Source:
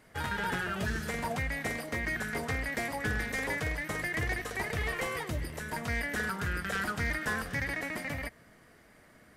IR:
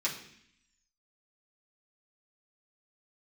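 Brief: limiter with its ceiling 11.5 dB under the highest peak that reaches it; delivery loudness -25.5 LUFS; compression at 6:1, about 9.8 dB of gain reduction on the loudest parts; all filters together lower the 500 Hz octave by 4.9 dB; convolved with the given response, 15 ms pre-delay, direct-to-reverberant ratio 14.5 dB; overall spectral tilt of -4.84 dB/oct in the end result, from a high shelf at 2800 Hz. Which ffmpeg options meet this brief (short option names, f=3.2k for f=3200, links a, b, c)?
-filter_complex "[0:a]equalizer=f=500:t=o:g=-6,highshelf=f=2.8k:g=-5.5,acompressor=threshold=-40dB:ratio=6,alimiter=level_in=16.5dB:limit=-24dB:level=0:latency=1,volume=-16.5dB,asplit=2[a][b];[1:a]atrim=start_sample=2205,adelay=15[c];[b][c]afir=irnorm=-1:irlink=0,volume=-20.5dB[d];[a][d]amix=inputs=2:normalize=0,volume=23dB"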